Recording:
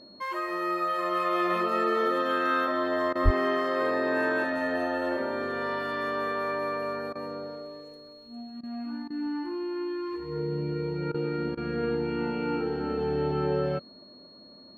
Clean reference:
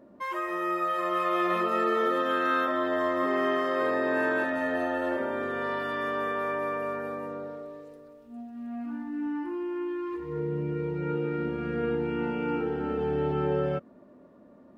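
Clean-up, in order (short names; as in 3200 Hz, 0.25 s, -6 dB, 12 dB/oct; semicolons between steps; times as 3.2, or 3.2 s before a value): notch 4300 Hz, Q 30; de-plosive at 3.24; interpolate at 3.13/7.13/8.61/9.08/11.12/11.55, 22 ms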